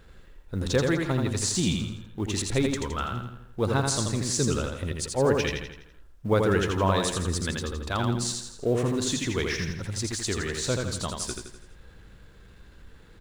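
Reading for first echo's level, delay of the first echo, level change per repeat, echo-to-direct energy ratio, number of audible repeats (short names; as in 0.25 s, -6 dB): -4.0 dB, 83 ms, -6.5 dB, -3.0 dB, 5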